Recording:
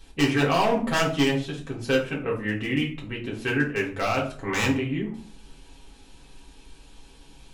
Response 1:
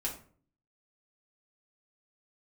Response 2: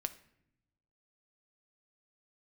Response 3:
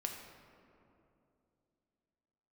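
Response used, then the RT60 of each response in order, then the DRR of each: 1; 0.45 s, 0.75 s, 2.8 s; -4.5 dB, 9.0 dB, 1.5 dB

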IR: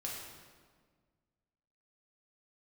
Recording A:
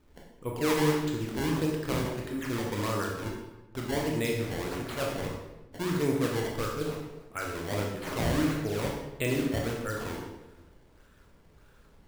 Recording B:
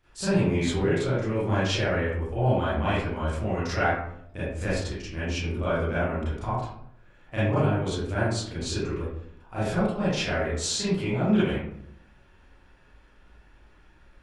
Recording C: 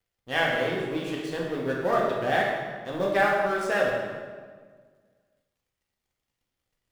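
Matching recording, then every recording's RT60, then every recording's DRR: C; 1.0 s, 0.75 s, 1.6 s; -1.5 dB, -12.5 dB, -3.5 dB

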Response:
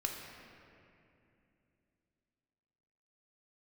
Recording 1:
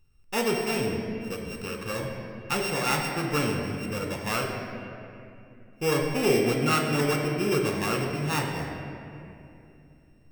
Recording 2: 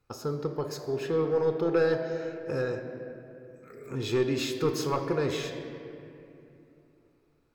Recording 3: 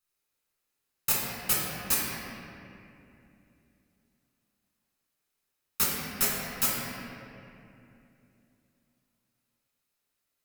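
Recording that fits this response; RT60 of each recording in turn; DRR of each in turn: 1; 2.7 s, 2.7 s, 2.7 s; 1.0 dB, 5.5 dB, -5.5 dB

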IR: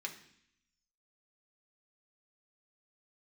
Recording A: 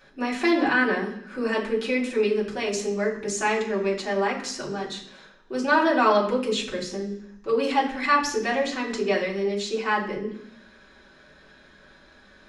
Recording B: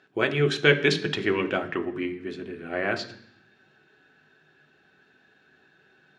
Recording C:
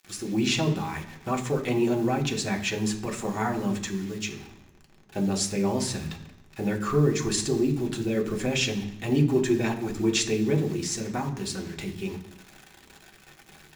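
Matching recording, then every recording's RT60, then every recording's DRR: C; 0.65 s, 0.65 s, 0.65 s; -6.0 dB, 5.0 dB, 1.0 dB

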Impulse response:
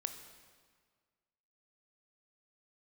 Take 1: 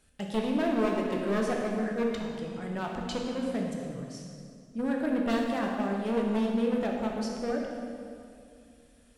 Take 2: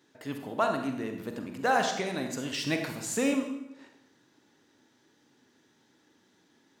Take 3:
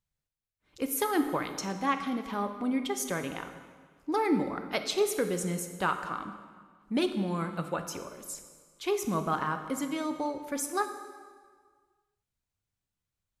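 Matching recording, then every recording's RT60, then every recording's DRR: 3; 2.4 s, 0.90 s, 1.7 s; -1.0 dB, 4.0 dB, 7.5 dB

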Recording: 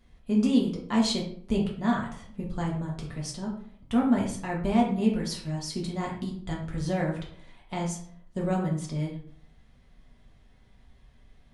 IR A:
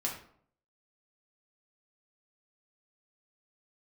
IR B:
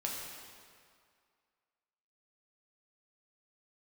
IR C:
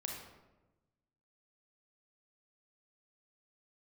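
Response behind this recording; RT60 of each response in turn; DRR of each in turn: A; 0.60 s, 2.1 s, 1.1 s; -3.0 dB, -2.5 dB, -0.5 dB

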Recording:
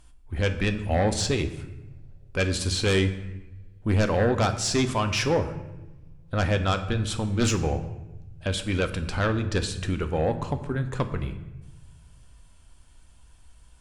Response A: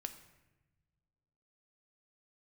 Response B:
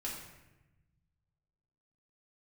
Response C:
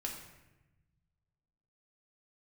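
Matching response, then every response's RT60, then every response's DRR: A; 1.2 s, 1.0 s, 1.0 s; 7.5 dB, -5.0 dB, -1.0 dB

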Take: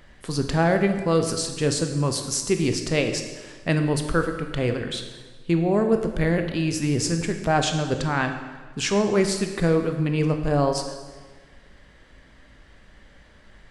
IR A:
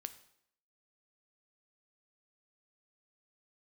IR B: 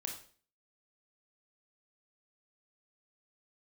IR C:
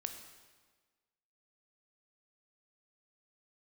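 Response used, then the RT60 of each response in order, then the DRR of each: C; 0.70 s, 0.45 s, 1.4 s; 10.5 dB, 1.5 dB, 5.5 dB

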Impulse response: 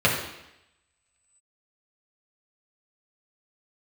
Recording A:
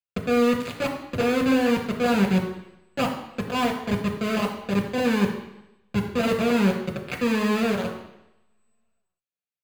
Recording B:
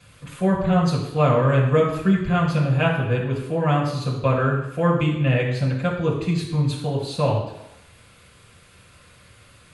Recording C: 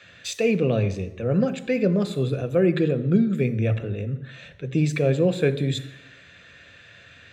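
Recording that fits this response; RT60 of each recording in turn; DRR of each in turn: B; 0.85 s, 0.85 s, 0.85 s; 1.0 dB, -4.0 dB, 10.5 dB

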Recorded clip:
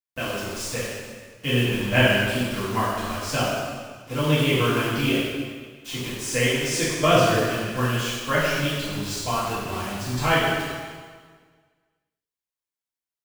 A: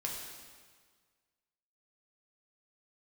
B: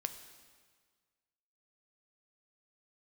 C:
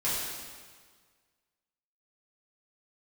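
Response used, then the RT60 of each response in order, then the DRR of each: C; 1.6 s, 1.6 s, 1.6 s; -2.0 dB, 8.0 dB, -10.5 dB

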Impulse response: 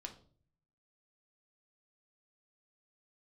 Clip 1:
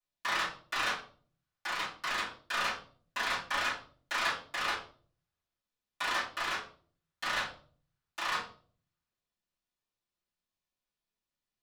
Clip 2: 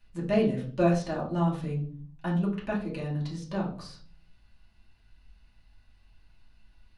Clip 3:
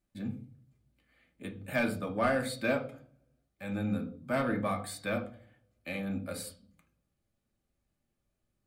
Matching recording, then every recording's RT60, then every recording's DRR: 3; 0.45 s, 0.45 s, 0.45 s; -13.5 dB, -5.0 dB, 3.0 dB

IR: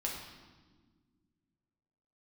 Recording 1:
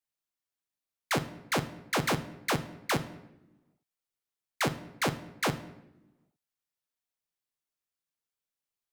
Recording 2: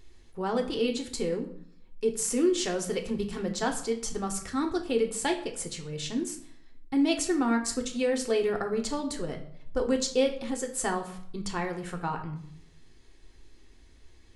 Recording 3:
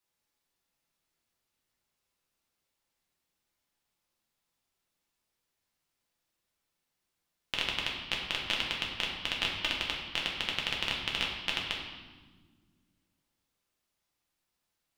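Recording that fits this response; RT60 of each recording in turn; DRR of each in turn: 3; no single decay rate, 0.65 s, 1.5 s; 9.0 dB, 3.0 dB, -2.5 dB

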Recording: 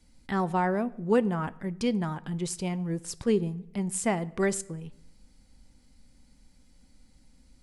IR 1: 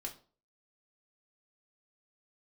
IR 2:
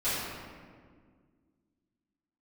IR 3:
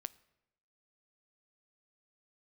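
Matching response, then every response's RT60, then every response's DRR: 3; 0.40 s, 1.8 s, 0.90 s; 0.5 dB, -16.0 dB, 15.0 dB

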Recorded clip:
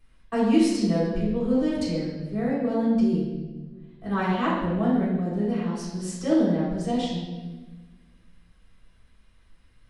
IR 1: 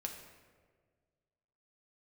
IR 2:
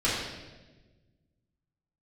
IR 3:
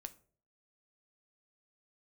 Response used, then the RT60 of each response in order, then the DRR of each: 2; 1.6 s, 1.2 s, 0.50 s; 1.5 dB, -10.5 dB, 10.0 dB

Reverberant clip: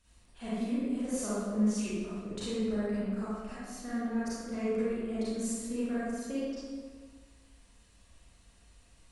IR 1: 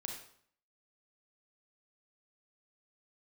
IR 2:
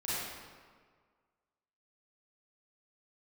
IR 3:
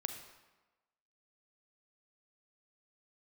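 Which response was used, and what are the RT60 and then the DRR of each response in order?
2; 0.60 s, 1.7 s, 1.2 s; 1.0 dB, -11.0 dB, 6.0 dB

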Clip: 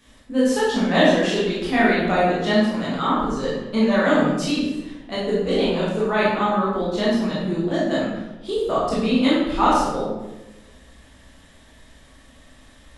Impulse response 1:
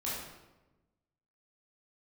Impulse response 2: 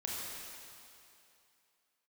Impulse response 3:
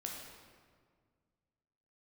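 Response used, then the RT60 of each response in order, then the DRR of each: 1; 1.1 s, 2.7 s, 1.8 s; -8.5 dB, -5.0 dB, -1.5 dB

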